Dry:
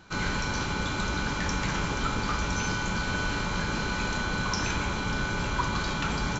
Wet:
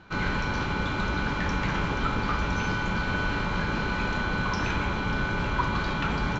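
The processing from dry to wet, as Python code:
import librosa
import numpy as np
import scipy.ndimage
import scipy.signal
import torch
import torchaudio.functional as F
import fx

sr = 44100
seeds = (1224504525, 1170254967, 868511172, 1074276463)

y = scipy.signal.sosfilt(scipy.signal.butter(2, 3200.0, 'lowpass', fs=sr, output='sos'), x)
y = F.gain(torch.from_numpy(y), 2.0).numpy()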